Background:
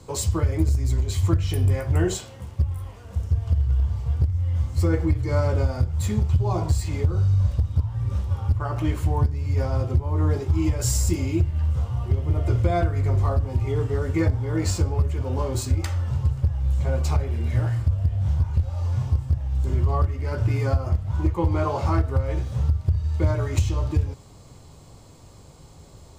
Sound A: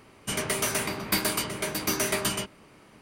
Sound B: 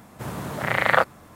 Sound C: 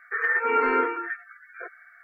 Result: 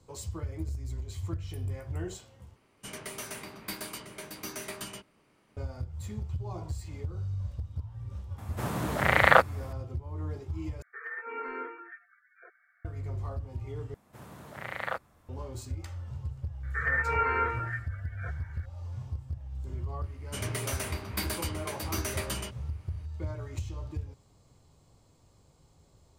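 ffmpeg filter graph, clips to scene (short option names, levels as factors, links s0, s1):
-filter_complex "[1:a]asplit=2[s0][s1];[2:a]asplit=2[s2][s3];[3:a]asplit=2[s4][s5];[0:a]volume=0.188[s6];[s3]asubboost=boost=7:cutoff=96[s7];[s5]highpass=510[s8];[s6]asplit=4[s9][s10][s11][s12];[s9]atrim=end=2.564[s13];[s0]atrim=end=3.01,asetpts=PTS-STARTPTS,volume=0.237[s14];[s10]atrim=start=5.566:end=10.824[s15];[s4]atrim=end=2.03,asetpts=PTS-STARTPTS,volume=0.168[s16];[s11]atrim=start=12.846:end=13.944[s17];[s7]atrim=end=1.35,asetpts=PTS-STARTPTS,volume=0.168[s18];[s12]atrim=start=15.286[s19];[s2]atrim=end=1.35,asetpts=PTS-STARTPTS,volume=0.944,afade=t=in:d=0.004:c=hsin,afade=t=out:st=1.346:d=0.004:c=hsin,adelay=8380[s20];[s8]atrim=end=2.03,asetpts=PTS-STARTPTS,volume=0.596,afade=t=in:d=0.004:c=hsin,afade=t=out:st=2.026:d=0.004:c=hsin,adelay=16630[s21];[s1]atrim=end=3.01,asetpts=PTS-STARTPTS,volume=0.398,afade=t=in:d=0.004:c=hsin,afade=t=out:st=3.006:d=0.004:c=hsin,adelay=20050[s22];[s13][s14]acrossfade=d=0.004:c1=hsin:c2=hsin[s23];[s23][s15]acrossfade=d=0.004:c1=hsin:c2=hsin[s24];[s24][s16]acrossfade=d=0.004:c1=hsin:c2=hsin[s25];[s25][s17]acrossfade=d=0.004:c1=hsin:c2=hsin[s26];[s26][s18]acrossfade=d=0.004:c1=hsin:c2=hsin[s27];[s27][s19]acrossfade=d=0.004:c1=hsin:c2=hsin[s28];[s28][s20][s21][s22]amix=inputs=4:normalize=0"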